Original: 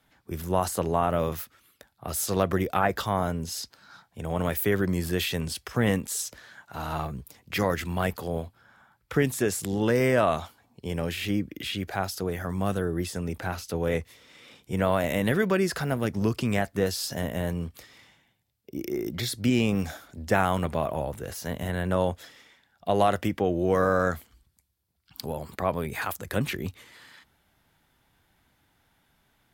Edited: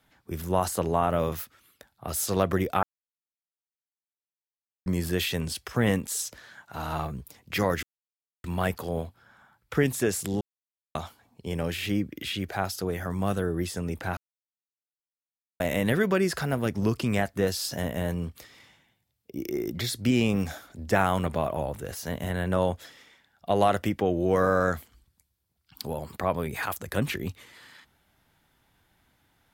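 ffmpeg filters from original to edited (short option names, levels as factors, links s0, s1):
-filter_complex "[0:a]asplit=8[s0][s1][s2][s3][s4][s5][s6][s7];[s0]atrim=end=2.83,asetpts=PTS-STARTPTS,afade=t=out:st=2.826:d=0.004:c=hsin[s8];[s1]atrim=start=2.83:end=4.86,asetpts=PTS-STARTPTS,volume=0[s9];[s2]atrim=start=4.86:end=7.83,asetpts=PTS-STARTPTS,afade=t=in:d=0.004:c=hsin,afade=t=out:st=2.966:d=0.004:c=hsin,apad=pad_dur=0.61[s10];[s3]atrim=start=7.83:end=9.8,asetpts=PTS-STARTPTS,afade=t=in:d=0.004:c=hsin,afade=t=out:st=1.966:d=0.004:c=hsin[s11];[s4]atrim=start=9.8:end=10.34,asetpts=PTS-STARTPTS,volume=0[s12];[s5]atrim=start=10.34:end=13.56,asetpts=PTS-STARTPTS,afade=t=in:d=0.004:c=hsin,afade=t=out:st=3.216:d=0.004:c=hsin[s13];[s6]atrim=start=13.56:end=14.99,asetpts=PTS-STARTPTS,volume=0[s14];[s7]atrim=start=14.99,asetpts=PTS-STARTPTS,afade=t=in:d=0.004:c=hsin[s15];[s8][s9][s10][s11][s12][s13][s14][s15]concat=n=8:v=0:a=1"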